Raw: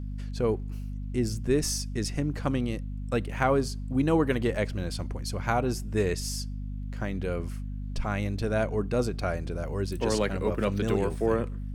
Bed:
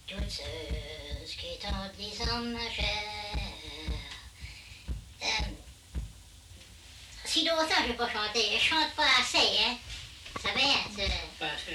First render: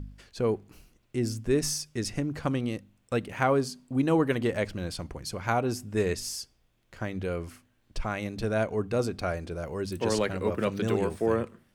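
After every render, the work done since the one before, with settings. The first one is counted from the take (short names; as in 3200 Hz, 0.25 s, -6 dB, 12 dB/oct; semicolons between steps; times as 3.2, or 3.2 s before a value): de-hum 50 Hz, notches 5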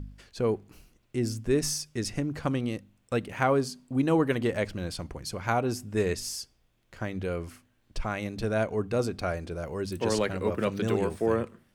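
nothing audible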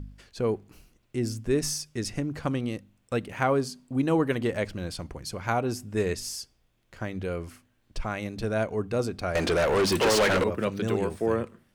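9.35–10.44 overdrive pedal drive 31 dB, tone 5000 Hz, clips at -15 dBFS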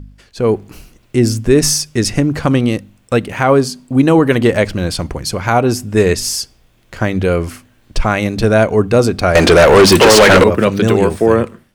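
AGC gain up to 12 dB; maximiser +5.5 dB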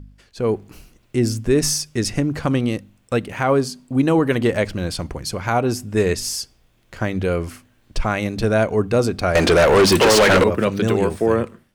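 gain -6.5 dB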